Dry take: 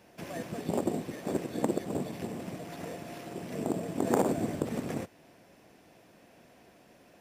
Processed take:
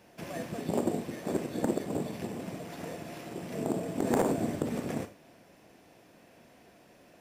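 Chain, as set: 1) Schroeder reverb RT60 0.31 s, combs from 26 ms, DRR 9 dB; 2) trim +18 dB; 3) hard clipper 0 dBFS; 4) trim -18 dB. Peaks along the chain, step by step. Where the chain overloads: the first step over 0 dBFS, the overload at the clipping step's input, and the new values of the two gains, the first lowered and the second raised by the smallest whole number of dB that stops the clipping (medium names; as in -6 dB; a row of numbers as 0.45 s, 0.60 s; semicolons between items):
-10.0 dBFS, +8.0 dBFS, 0.0 dBFS, -18.0 dBFS; step 2, 8.0 dB; step 2 +10 dB, step 4 -10 dB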